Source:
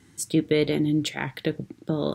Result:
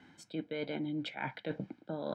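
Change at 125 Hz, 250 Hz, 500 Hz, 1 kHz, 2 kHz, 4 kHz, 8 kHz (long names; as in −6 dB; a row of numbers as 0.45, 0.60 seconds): −15.5 dB, −14.0 dB, −13.5 dB, −5.5 dB, −10.0 dB, −13.0 dB, below −25 dB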